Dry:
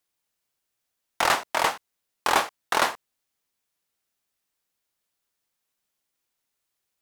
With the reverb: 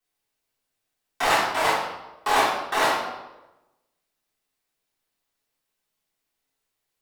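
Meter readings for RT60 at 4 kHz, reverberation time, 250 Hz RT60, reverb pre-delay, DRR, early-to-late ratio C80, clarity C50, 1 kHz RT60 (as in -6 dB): 0.75 s, 1.1 s, 1.0 s, 3 ms, -13.0 dB, 5.0 dB, 1.5 dB, 0.95 s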